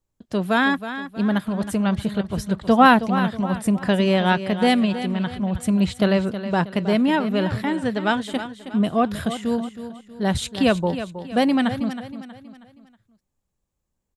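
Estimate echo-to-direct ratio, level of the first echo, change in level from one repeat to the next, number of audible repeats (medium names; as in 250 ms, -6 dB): -11.0 dB, -11.5 dB, -8.0 dB, 3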